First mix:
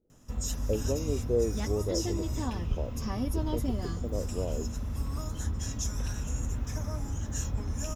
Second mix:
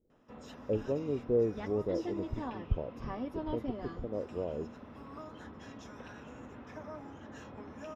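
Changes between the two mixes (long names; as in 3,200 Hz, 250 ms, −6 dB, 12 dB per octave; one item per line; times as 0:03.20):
background: add high-pass filter 320 Hz 12 dB per octave
master: add high-frequency loss of the air 390 metres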